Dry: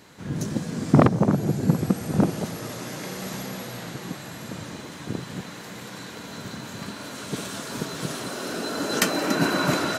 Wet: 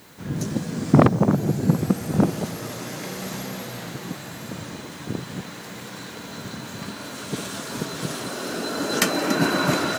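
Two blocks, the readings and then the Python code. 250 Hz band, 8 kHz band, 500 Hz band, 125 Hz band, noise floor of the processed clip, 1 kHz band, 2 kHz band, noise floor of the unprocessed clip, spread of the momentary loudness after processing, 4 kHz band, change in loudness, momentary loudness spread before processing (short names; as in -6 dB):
+1.5 dB, +1.5 dB, +1.5 dB, +1.5 dB, -38 dBFS, +1.5 dB, +1.5 dB, -40 dBFS, 15 LU, +1.5 dB, +1.5 dB, 15 LU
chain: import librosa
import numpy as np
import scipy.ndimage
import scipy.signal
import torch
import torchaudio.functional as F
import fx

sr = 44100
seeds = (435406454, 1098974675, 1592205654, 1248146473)

y = fx.dmg_noise_colour(x, sr, seeds[0], colour='blue', level_db=-58.0)
y = y * librosa.db_to_amplitude(1.5)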